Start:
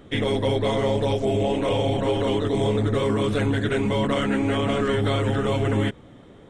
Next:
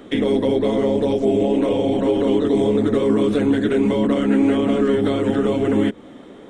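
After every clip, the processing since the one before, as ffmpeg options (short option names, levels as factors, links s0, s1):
-filter_complex "[0:a]lowshelf=f=170:t=q:w=1.5:g=-10.5,acrossover=split=480[s0][s1];[s1]acompressor=threshold=0.0178:ratio=6[s2];[s0][s2]amix=inputs=2:normalize=0,volume=2.11"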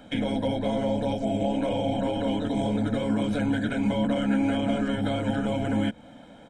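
-af "aecho=1:1:1.3:0.94,volume=0.447"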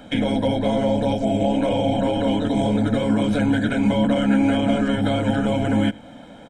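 -af "aecho=1:1:87:0.0708,volume=2"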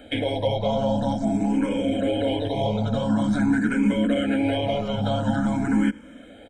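-filter_complex "[0:a]asplit=2[s0][s1];[s1]afreqshift=0.47[s2];[s0][s2]amix=inputs=2:normalize=1"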